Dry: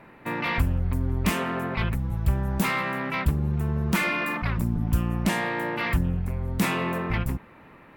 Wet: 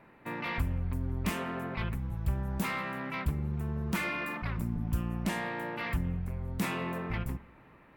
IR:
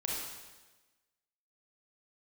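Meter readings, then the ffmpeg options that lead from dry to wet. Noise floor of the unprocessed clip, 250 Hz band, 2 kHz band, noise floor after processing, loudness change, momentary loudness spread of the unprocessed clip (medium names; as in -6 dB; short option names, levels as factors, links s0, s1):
-50 dBFS, -7.5 dB, -8.5 dB, -58 dBFS, -8.0 dB, 3 LU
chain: -filter_complex "[0:a]asplit=2[s0][s1];[s1]lowpass=2700[s2];[1:a]atrim=start_sample=2205,asetrate=35721,aresample=44100[s3];[s2][s3]afir=irnorm=-1:irlink=0,volume=0.0841[s4];[s0][s4]amix=inputs=2:normalize=0,volume=0.376"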